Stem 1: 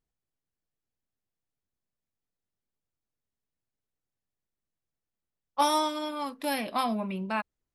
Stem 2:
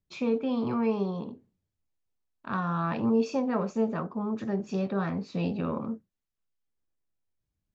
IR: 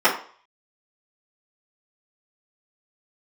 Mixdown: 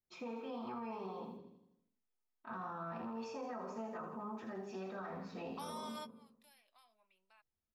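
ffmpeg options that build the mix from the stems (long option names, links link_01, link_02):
-filter_complex "[0:a]highpass=650,alimiter=level_in=1.5dB:limit=-24dB:level=0:latency=1:release=418,volume=-1.5dB,highshelf=frequency=2100:gain=10.5,volume=-3dB[link_01];[1:a]bandreject=frequency=50:width_type=h:width=6,bandreject=frequency=100:width_type=h:width=6,bandreject=frequency=150:width_type=h:width=6,bandreject=frequency=200:width_type=h:width=6,bandreject=frequency=250:width_type=h:width=6,bandreject=frequency=300:width_type=h:width=6,bandreject=frequency=350:width_type=h:width=6,bandreject=frequency=400:width_type=h:width=6,bandreject=frequency=450:width_type=h:width=6,volume=-13.5dB,asplit=4[link_02][link_03][link_04][link_05];[link_03]volume=-13.5dB[link_06];[link_04]volume=-4.5dB[link_07];[link_05]apad=whole_len=341740[link_08];[link_01][link_08]sidechaingate=range=-32dB:threshold=-57dB:ratio=16:detection=peak[link_09];[2:a]atrim=start_sample=2205[link_10];[link_06][link_10]afir=irnorm=-1:irlink=0[link_11];[link_07]aecho=0:1:82|164|246|328|410|492|574|656:1|0.56|0.314|0.176|0.0983|0.0551|0.0308|0.0173[link_12];[link_09][link_02][link_11][link_12]amix=inputs=4:normalize=0,acrossover=split=620|1600|5500[link_13][link_14][link_15][link_16];[link_13]acompressor=threshold=-45dB:ratio=4[link_17];[link_14]acompressor=threshold=-44dB:ratio=4[link_18];[link_15]acompressor=threshold=-58dB:ratio=4[link_19];[link_16]acompressor=threshold=-58dB:ratio=4[link_20];[link_17][link_18][link_19][link_20]amix=inputs=4:normalize=0,alimiter=level_in=12dB:limit=-24dB:level=0:latency=1:release=18,volume=-12dB"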